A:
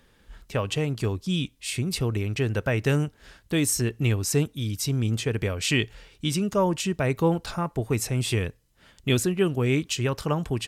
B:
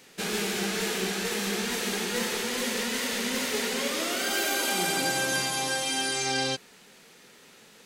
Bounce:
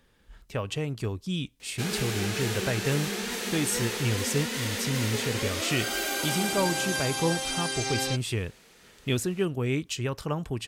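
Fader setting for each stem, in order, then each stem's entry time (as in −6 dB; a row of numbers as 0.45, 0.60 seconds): −4.5, −2.5 decibels; 0.00, 1.60 seconds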